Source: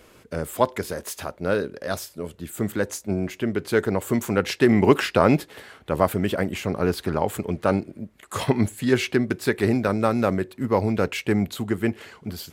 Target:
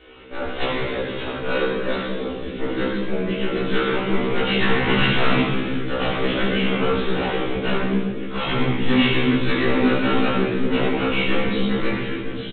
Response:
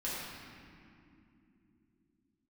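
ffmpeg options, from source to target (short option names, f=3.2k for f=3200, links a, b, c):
-filter_complex "[0:a]acrossover=split=210|1300[a][b][c];[b]aeval=exprs='0.0891*(abs(mod(val(0)/0.0891+3,4)-2)-1)':c=same[d];[a][d][c]amix=inputs=3:normalize=0,highshelf=f=2.8k:g=11,aresample=8000,aeval=exprs='clip(val(0),-1,0.0282)':c=same,aresample=44100[e];[1:a]atrim=start_sample=2205,asetrate=66150,aresample=44100[f];[e][f]afir=irnorm=-1:irlink=0,afftfilt=real='re*1.73*eq(mod(b,3),0)':imag='im*1.73*eq(mod(b,3),0)':win_size=2048:overlap=0.75,volume=7.5dB"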